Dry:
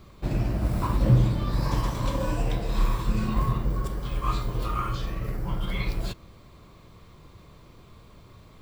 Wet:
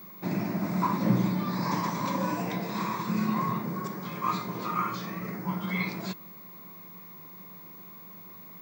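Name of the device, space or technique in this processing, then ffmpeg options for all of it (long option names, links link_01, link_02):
old television with a line whistle: -af "highpass=frequency=180:width=0.5412,highpass=frequency=180:width=1.3066,equalizer=frequency=180:width_type=q:width=4:gain=10,equalizer=frequency=510:width_type=q:width=4:gain=-5,equalizer=frequency=970:width_type=q:width=4:gain=5,equalizer=frequency=2100:width_type=q:width=4:gain=7,equalizer=frequency=3000:width_type=q:width=4:gain=-9,equalizer=frequency=6300:width_type=q:width=4:gain=4,lowpass=frequency=7200:width=0.5412,lowpass=frequency=7200:width=1.3066,aeval=exprs='val(0)+0.00562*sin(2*PI*15625*n/s)':channel_layout=same"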